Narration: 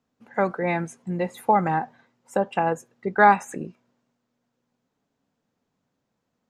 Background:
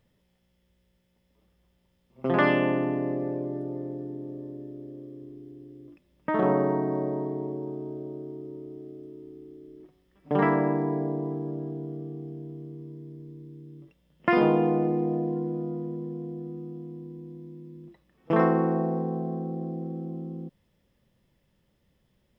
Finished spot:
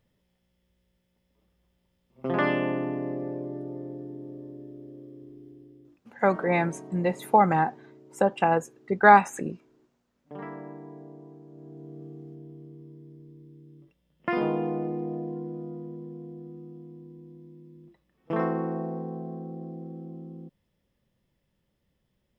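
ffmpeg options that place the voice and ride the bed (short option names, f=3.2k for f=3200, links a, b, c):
-filter_complex "[0:a]adelay=5850,volume=0.5dB[a];[1:a]volume=8dB,afade=t=out:st=5.47:d=0.78:silence=0.211349,afade=t=in:st=11.5:d=0.55:silence=0.281838[b];[a][b]amix=inputs=2:normalize=0"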